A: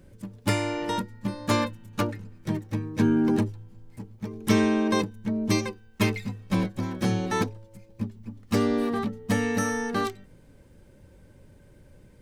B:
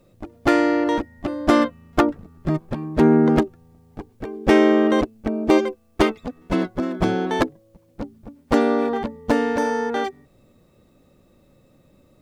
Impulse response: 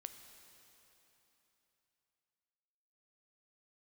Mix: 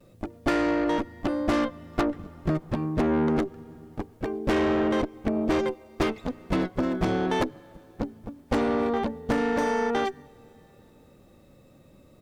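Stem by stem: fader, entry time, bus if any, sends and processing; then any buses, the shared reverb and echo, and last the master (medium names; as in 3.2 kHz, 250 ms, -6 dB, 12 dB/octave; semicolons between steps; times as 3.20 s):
-17.5 dB, 0.00 s, no send, none
+2.5 dB, 5 ms, send -14.5 dB, none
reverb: on, RT60 3.4 s, pre-delay 6 ms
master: valve stage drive 14 dB, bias 0.5; compression, threshold -21 dBFS, peak gain reduction 6.5 dB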